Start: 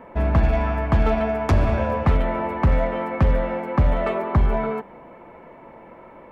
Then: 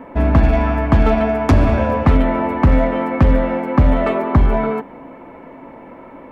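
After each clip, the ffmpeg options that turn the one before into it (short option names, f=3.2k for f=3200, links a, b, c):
-af "equalizer=f=270:w=6.7:g=13,volume=5dB"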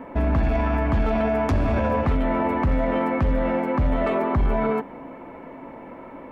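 -af "alimiter=limit=-12.5dB:level=0:latency=1:release=11,volume=-2dB"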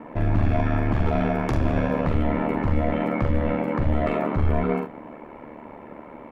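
-af "aecho=1:1:45|73:0.596|0.282,aeval=exprs='val(0)*sin(2*PI*37*n/s)':c=same"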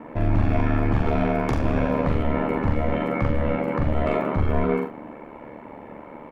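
-filter_complex "[0:a]asplit=2[a][b];[b]adelay=42,volume=-6dB[c];[a][c]amix=inputs=2:normalize=0"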